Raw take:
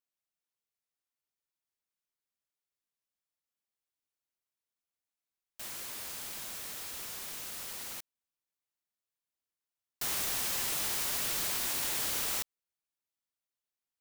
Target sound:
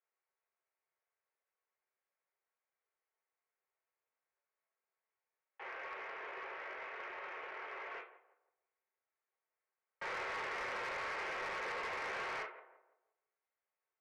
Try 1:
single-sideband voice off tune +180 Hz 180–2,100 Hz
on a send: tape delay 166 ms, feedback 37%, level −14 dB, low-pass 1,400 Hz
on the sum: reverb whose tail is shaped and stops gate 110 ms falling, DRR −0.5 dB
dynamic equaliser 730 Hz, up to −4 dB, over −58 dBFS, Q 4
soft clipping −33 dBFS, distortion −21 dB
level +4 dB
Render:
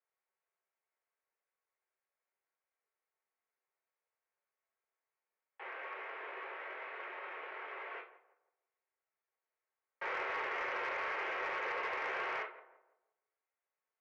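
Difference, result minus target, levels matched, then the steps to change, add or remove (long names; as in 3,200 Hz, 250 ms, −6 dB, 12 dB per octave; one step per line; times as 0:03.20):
soft clipping: distortion −9 dB
change: soft clipping −40.5 dBFS, distortion −11 dB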